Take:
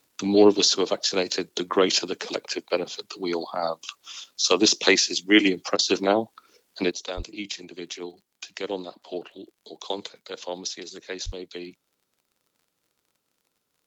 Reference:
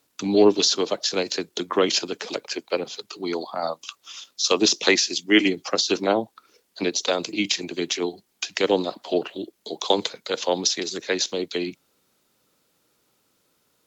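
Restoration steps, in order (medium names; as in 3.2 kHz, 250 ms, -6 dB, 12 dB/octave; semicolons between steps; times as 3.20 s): de-click; 7.16–7.28 s: high-pass 140 Hz 24 dB/octave; 11.25–11.37 s: high-pass 140 Hz 24 dB/octave; interpolate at 5.77 s, 18 ms; 6.91 s: gain correction +10 dB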